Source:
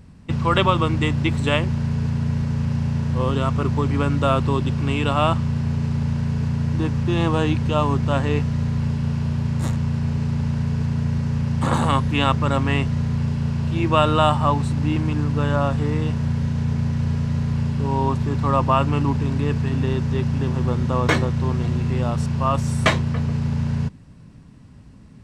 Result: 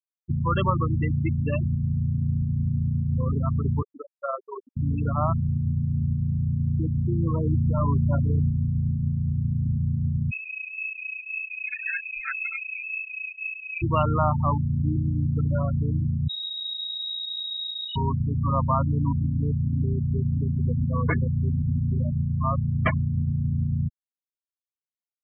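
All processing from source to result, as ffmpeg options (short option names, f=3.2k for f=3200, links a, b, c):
-filter_complex "[0:a]asettb=1/sr,asplit=3[a][b][c];[a]atrim=end=3.824[d];[b]atrim=start=3.82:end=4.77,asetpts=PTS-STARTPTS,afade=t=in:d=0.004:c=qsin,afade=t=out:st=0.946:d=0.004:c=qsin,highpass=f=320:w=0.5412,highpass=f=320:w=1.3066,tremolo=f=21:d=0.4[e];[c]atrim=start=4.766[f];[d][e]acrossfade=d=0.004:c1=hsin:c2=qsin[g];[g][f]acrossfade=d=0.004:c1=qsin:c2=hsin,asettb=1/sr,asplit=3[h][i][j];[h]atrim=end=7.424[k];[i]atrim=start=7.42:end=8.51,asetpts=PTS-STARTPTS,afade=t=in:d=0.004:c=qsin,afade=t=out:st=1.086:d=0.004:c=qsin,aemphasis=mode=production:type=75kf,asplit=2[l][m];[m]adelay=35,volume=-9dB[n];[l][n]amix=inputs=2:normalize=0,atrim=end_sample=48069,asoftclip=type=hard:threshold=-13dB[o];[j]atrim=start=8.506[p];[k][o]acrossfade=d=0.004:c1=hsin:c2=qsin[q];[q][p]acrossfade=d=0.004:c1=qsin:c2=hsin,asettb=1/sr,asplit=3[r][s][t];[r]atrim=end=10.314[u];[s]atrim=start=10.31:end=13.82,asetpts=PTS-STARTPTS,afade=t=in:d=0.004:c=qsin,afade=t=out:st=3.506:d=0.004:c=qsin,flanger=delay=1.1:depth=4.8:regen=32:speed=1.9:shape=sinusoidal,lowpass=f=2.3k:t=q:w=0.5098,lowpass=f=2.3k:t=q:w=0.6013,lowpass=f=2.3k:t=q:w=0.9,lowpass=f=2.3k:t=q:w=2.563,afreqshift=-2700[v];[t]atrim=start=13.816[w];[u][v]acrossfade=d=0.004:c1=hsin:c2=qsin[x];[x][w]acrossfade=d=0.004:c1=qsin:c2=hsin,asettb=1/sr,asplit=3[y][z][aa];[y]atrim=end=16.284[ab];[z]atrim=start=16.28:end=17.96,asetpts=PTS-STARTPTS,afade=t=in:d=0.004:c=qsin,afade=t=out:st=1.676:d=0.004:c=qsin,equalizer=f=330:t=o:w=0.56:g=-5,asoftclip=type=hard:threshold=-19dB,lowpass=f=3.3k:t=q:w=0.5098,lowpass=f=3.3k:t=q:w=0.6013,lowpass=f=3.3k:t=q:w=0.9,lowpass=f=3.3k:t=q:w=2.563,afreqshift=-3900[ac];[aa]atrim=start=17.956[ad];[ab][ac]acrossfade=d=0.004:c1=hsin:c2=qsin[ae];[ae][ad]acrossfade=d=0.004:c1=qsin:c2=hsin,lowpass=f=1.7k:p=1,equalizer=f=440:t=o:w=2.7:g=-7,afftfilt=real='re*gte(hypot(re,im),0.158)':imag='im*gte(hypot(re,im),0.158)':win_size=1024:overlap=0.75"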